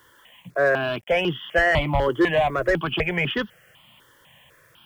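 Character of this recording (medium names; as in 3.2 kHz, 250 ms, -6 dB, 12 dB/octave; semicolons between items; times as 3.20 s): a quantiser's noise floor 10-bit, dither none; notches that jump at a steady rate 4 Hz 690–2300 Hz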